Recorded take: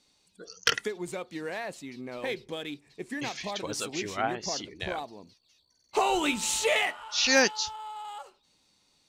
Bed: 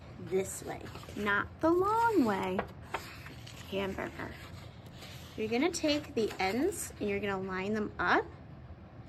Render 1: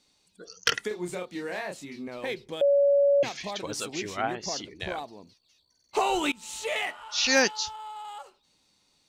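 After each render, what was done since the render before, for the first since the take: 0.88–2.08 s: doubling 28 ms -3.5 dB; 2.61–3.23 s: bleep 565 Hz -17.5 dBFS; 6.32–7.08 s: fade in, from -22.5 dB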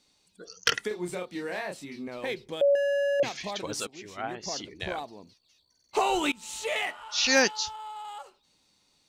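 0.84–2.01 s: band-stop 6.8 kHz; 2.75–3.20 s: hard clipper -25 dBFS; 3.87–4.68 s: fade in, from -17 dB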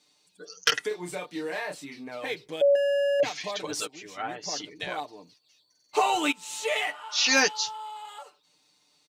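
high-pass 290 Hz 6 dB/octave; comb 6.7 ms, depth 76%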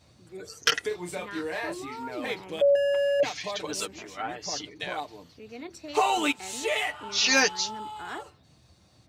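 add bed -11 dB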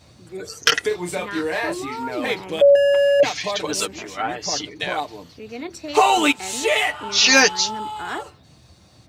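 trim +8.5 dB; peak limiter -3 dBFS, peak gain reduction 3 dB

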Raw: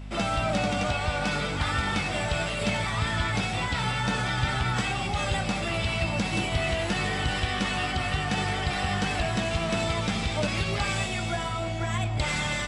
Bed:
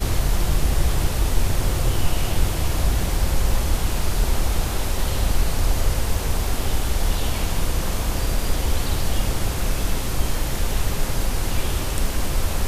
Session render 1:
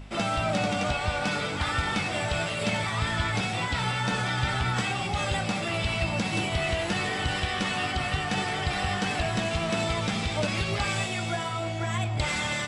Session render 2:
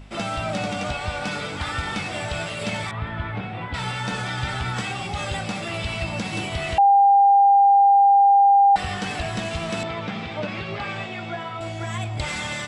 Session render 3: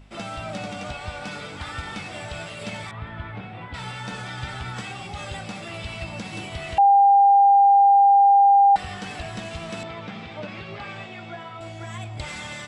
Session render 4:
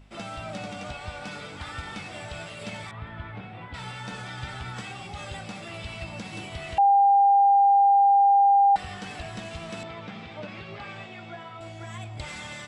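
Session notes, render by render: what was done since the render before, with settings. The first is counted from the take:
de-hum 50 Hz, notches 5
2.91–3.74 s: distance through air 490 m; 6.78–8.76 s: bleep 799 Hz -11 dBFS; 9.83–11.61 s: band-pass 130–2900 Hz
upward expansion 1.5:1, over -26 dBFS
trim -3.5 dB

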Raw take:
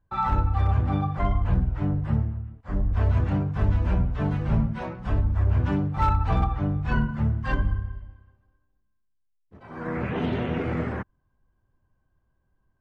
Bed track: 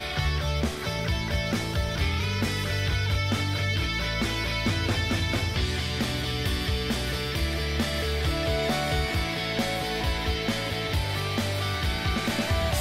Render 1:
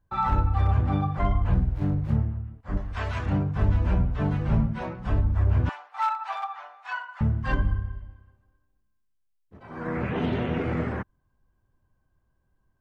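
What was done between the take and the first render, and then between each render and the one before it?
1.57–2.16 s: median filter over 41 samples; 2.77–3.26 s: tilt shelf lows -10 dB, about 770 Hz; 5.69–7.21 s: steep high-pass 760 Hz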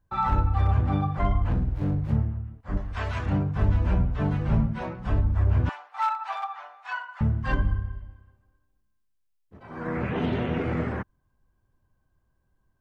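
1.45–2.13 s: hard clipper -20 dBFS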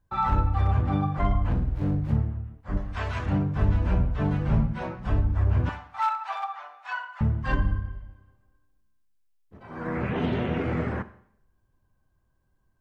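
Schroeder reverb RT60 0.64 s, combs from 30 ms, DRR 14 dB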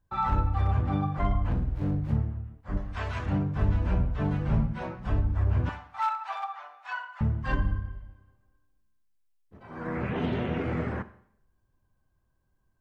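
trim -2.5 dB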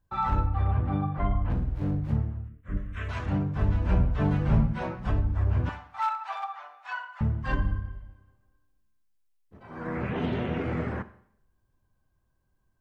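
0.46–1.50 s: distance through air 240 m; 2.48–3.09 s: static phaser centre 2 kHz, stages 4; 3.89–5.11 s: gain +3 dB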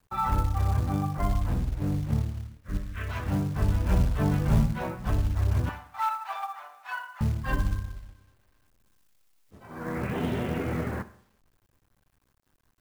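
companded quantiser 6-bit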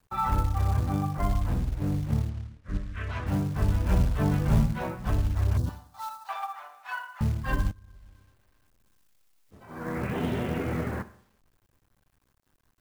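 2.29–3.27 s: distance through air 61 m; 5.57–6.29 s: FFT filter 210 Hz 0 dB, 1.2 kHz -10 dB, 2.3 kHz -17 dB, 4.2 kHz +1 dB; 7.71–9.68 s: compression 16:1, threshold -45 dBFS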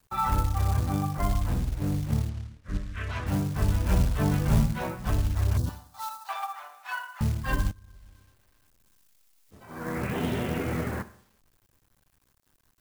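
treble shelf 3.3 kHz +7 dB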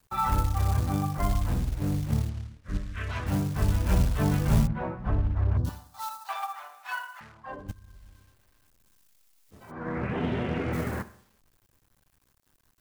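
4.67–5.65 s: low-pass 1.5 kHz; 7.19–7.68 s: band-pass filter 2 kHz -> 380 Hz, Q 2.2; 9.70–10.72 s: low-pass 1.8 kHz -> 4 kHz

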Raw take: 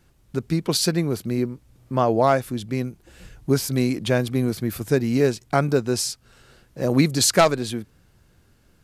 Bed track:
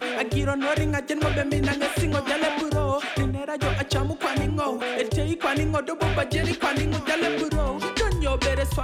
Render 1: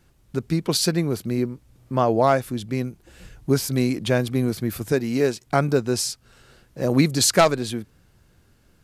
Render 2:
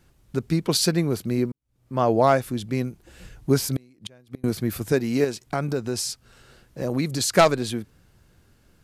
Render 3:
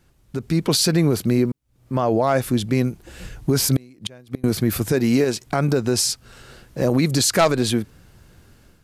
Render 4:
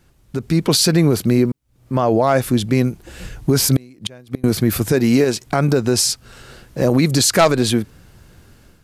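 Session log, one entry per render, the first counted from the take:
4.92–5.47 s: bass shelf 130 Hz -11 dB
1.52–2.07 s: fade in quadratic; 3.63–4.44 s: inverted gate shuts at -15 dBFS, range -32 dB; 5.24–7.36 s: compression 2:1, threshold -25 dBFS
peak limiter -17 dBFS, peak gain reduction 10.5 dB; level rider gain up to 8 dB
trim +3.5 dB

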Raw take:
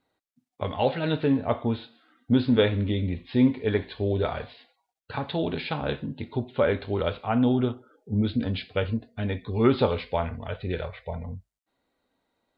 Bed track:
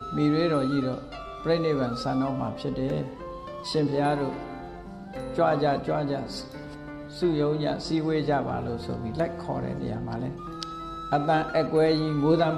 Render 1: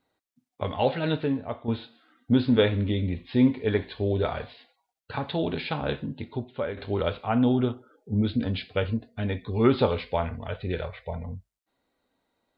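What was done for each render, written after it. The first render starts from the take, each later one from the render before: 1.11–1.68 s: fade out quadratic, to -9 dB; 6.10–6.77 s: fade out, to -11 dB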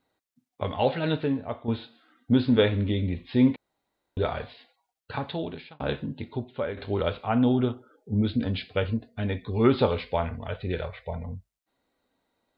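3.56–4.17 s: room tone; 5.15–5.80 s: fade out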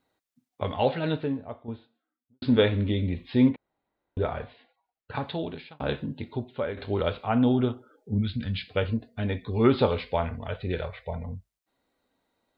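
0.72–2.42 s: studio fade out; 3.49–5.15 s: distance through air 340 m; 8.18–8.68 s: high-order bell 540 Hz -13.5 dB 2.4 oct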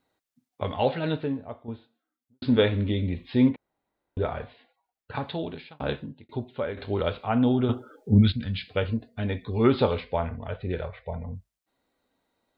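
5.89–6.29 s: fade out linear; 7.69–8.32 s: gain +8.5 dB; 10.00–11.35 s: treble shelf 3.2 kHz -10.5 dB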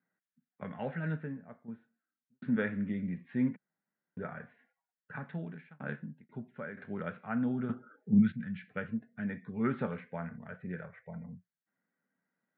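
elliptic band-pass 170–1700 Hz, stop band 60 dB; high-order bell 560 Hz -14.5 dB 2.4 oct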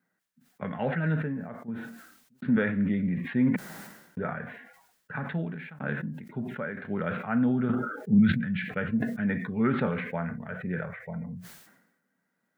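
in parallel at +2.5 dB: peak limiter -25.5 dBFS, peak gain reduction 10 dB; on the sum: decay stretcher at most 60 dB/s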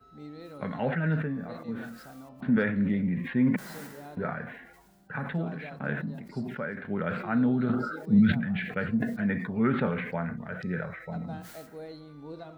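add bed track -21 dB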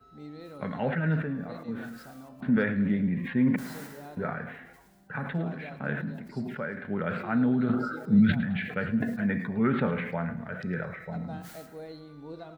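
feedback delay 107 ms, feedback 47%, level -16 dB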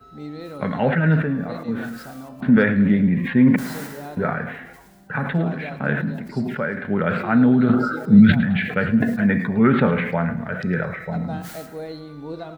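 trim +9.5 dB

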